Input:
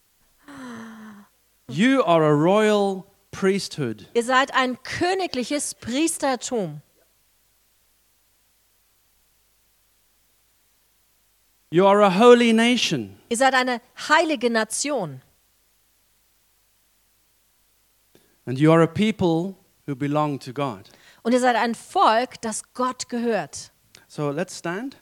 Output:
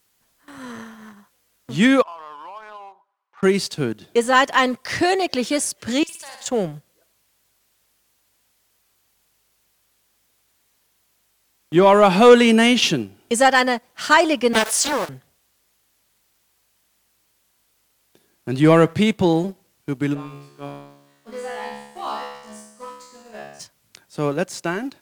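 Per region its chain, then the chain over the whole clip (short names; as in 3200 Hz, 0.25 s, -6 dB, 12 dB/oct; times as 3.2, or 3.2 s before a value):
2.02–3.43 ladder band-pass 1100 Hz, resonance 65% + compressor 4:1, threshold -37 dBFS
6.03–6.46 passive tone stack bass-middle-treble 10-0-10 + compressor, threshold -37 dBFS + flutter echo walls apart 10.3 m, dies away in 0.84 s
14.53–15.09 zero-crossing step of -25.5 dBFS + Bessel high-pass 520 Hz, order 4 + Doppler distortion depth 0.7 ms
20.13–23.59 crackle 410/s -33 dBFS + resonator 71 Hz, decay 1.1 s, mix 100%
whole clip: HPF 100 Hz 6 dB/oct; sample leveller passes 1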